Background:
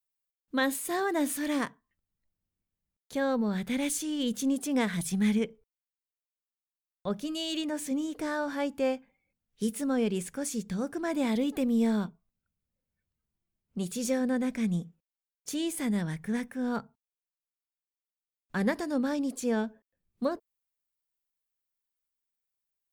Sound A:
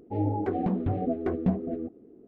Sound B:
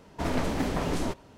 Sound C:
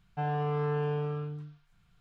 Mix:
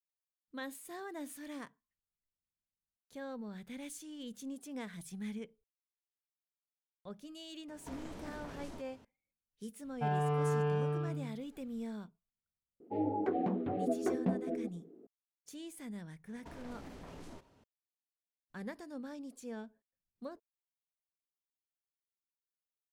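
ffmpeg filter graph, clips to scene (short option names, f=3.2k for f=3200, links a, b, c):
-filter_complex "[2:a]asplit=2[a][b];[0:a]volume=-15.5dB[c];[a]acompressor=threshold=-35dB:ratio=6:attack=3.2:release=140:knee=1:detection=peak[d];[3:a]acontrast=38[e];[1:a]highpass=230[f];[b]acompressor=threshold=-32dB:ratio=6:attack=3.2:release=140:knee=1:detection=peak[g];[d]atrim=end=1.37,asetpts=PTS-STARTPTS,volume=-8.5dB,afade=t=in:d=0.004:c=hsin,afade=t=out:st=1.366:d=0.004:c=hsin,adelay=7680[h];[e]atrim=end=2,asetpts=PTS-STARTPTS,volume=-7dB,afade=t=in:d=0.004:c=hsin,afade=t=out:st=1.996:d=0.004:c=hsin,adelay=9840[i];[f]atrim=end=2.27,asetpts=PTS-STARTPTS,volume=-3.5dB,afade=t=in:d=0.004:c=hsin,afade=t=out:st=2.266:d=0.004:c=hsin,adelay=12800[j];[g]atrim=end=1.37,asetpts=PTS-STARTPTS,volume=-13.5dB,afade=t=in:d=0.004:c=hsin,afade=t=out:st=1.366:d=0.004:c=hsin,adelay=16270[k];[c][h][i][j][k]amix=inputs=5:normalize=0"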